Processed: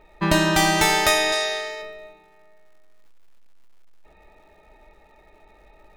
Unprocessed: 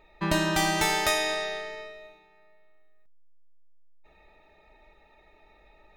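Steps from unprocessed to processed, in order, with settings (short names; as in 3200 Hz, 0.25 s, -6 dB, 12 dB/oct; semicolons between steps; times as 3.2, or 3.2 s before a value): 1.32–1.82 tone controls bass -12 dB, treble +8 dB; crackle 300/s -54 dBFS; mismatched tape noise reduction decoder only; gain +6.5 dB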